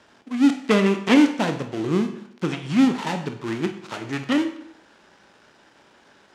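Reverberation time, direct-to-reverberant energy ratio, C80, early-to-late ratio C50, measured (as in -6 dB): 0.70 s, 6.0 dB, 12.5 dB, 9.5 dB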